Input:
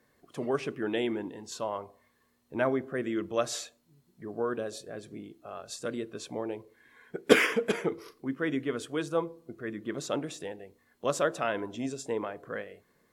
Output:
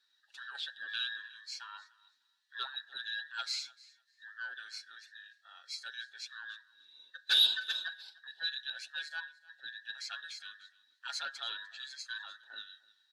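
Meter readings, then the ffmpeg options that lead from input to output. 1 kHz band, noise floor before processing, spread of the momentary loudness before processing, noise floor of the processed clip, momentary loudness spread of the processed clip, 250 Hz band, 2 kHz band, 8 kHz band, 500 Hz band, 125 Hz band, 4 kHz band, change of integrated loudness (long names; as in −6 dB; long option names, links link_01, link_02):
−12.0 dB, −70 dBFS, 14 LU, −74 dBFS, 15 LU, below −40 dB, −4.0 dB, −8.0 dB, below −35 dB, below −40 dB, +8.0 dB, −4.0 dB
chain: -filter_complex "[0:a]afftfilt=real='real(if(between(b,1,1012),(2*floor((b-1)/92)+1)*92-b,b),0)':imag='imag(if(between(b,1,1012),(2*floor((b-1)/92)+1)*92-b,b),0)*if(between(b,1,1012),-1,1)':win_size=2048:overlap=0.75,aecho=1:1:7.3:0.62,acontrast=84,aeval=exprs='1*(cos(1*acos(clip(val(0)/1,-1,1)))-cos(1*PI/2))+0.0178*(cos(6*acos(clip(val(0)/1,-1,1)))-cos(6*PI/2))':channel_layout=same,bandpass=frequency=4000:width_type=q:width=5.3:csg=0,asoftclip=type=tanh:threshold=-16.5dB,asplit=2[link_01][link_02];[link_02]aecho=0:1:300|600:0.0794|0.0127[link_03];[link_01][link_03]amix=inputs=2:normalize=0"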